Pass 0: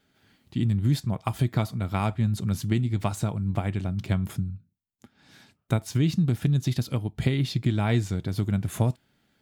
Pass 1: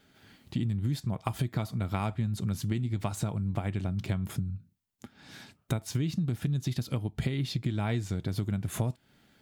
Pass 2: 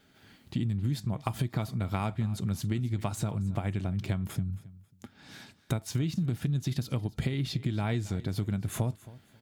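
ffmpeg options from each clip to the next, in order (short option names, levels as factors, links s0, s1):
-af "acompressor=threshold=0.02:ratio=4,volume=1.78"
-af "aecho=1:1:271|542:0.112|0.0292"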